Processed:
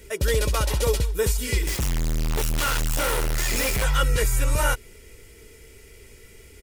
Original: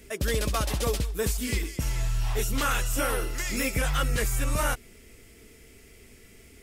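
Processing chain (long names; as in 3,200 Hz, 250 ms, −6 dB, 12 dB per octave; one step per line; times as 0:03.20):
comb filter 2.1 ms, depth 51%
0:01.67–0:03.84: log-companded quantiser 2 bits
level +2.5 dB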